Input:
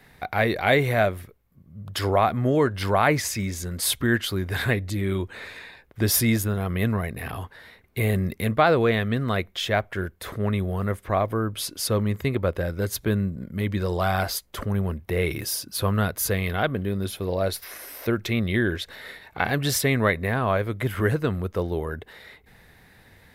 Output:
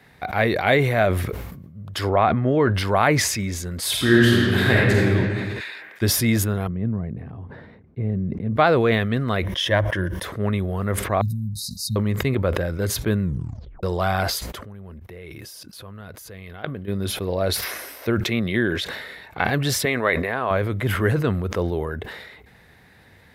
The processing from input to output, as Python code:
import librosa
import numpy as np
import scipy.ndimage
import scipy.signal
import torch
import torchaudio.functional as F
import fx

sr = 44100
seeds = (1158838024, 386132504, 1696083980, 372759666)

y = fx.lowpass(x, sr, hz=3600.0, slope=12, at=(2.09, 2.74))
y = fx.reverb_throw(y, sr, start_s=3.89, length_s=1.12, rt60_s=2.4, drr_db=-5.0)
y = fx.highpass(y, sr, hz=1500.0, slope=12, at=(5.59, 6.01), fade=0.02)
y = fx.bandpass_q(y, sr, hz=160.0, q=1.0, at=(6.67, 8.56))
y = fx.ripple_eq(y, sr, per_octave=1.2, db=10, at=(9.44, 10.24))
y = fx.brickwall_bandstop(y, sr, low_hz=230.0, high_hz=3700.0, at=(11.21, 11.96))
y = fx.level_steps(y, sr, step_db=20, at=(14.5, 16.87), fade=0.02)
y = fx.highpass(y, sr, hz=120.0, slope=12, at=(18.2, 18.9))
y = fx.bass_treble(y, sr, bass_db=-14, treble_db=-4, at=(19.85, 20.51))
y = fx.edit(y, sr, fx.tape_stop(start_s=13.22, length_s=0.61), tone=tone)
y = scipy.signal.sosfilt(scipy.signal.butter(2, 55.0, 'highpass', fs=sr, output='sos'), y)
y = fx.high_shelf(y, sr, hz=8500.0, db=-7.0)
y = fx.sustainer(y, sr, db_per_s=41.0)
y = y * 10.0 ** (1.5 / 20.0)